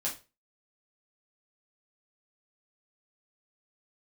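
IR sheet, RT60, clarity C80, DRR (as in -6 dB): 0.30 s, 17.0 dB, -5.5 dB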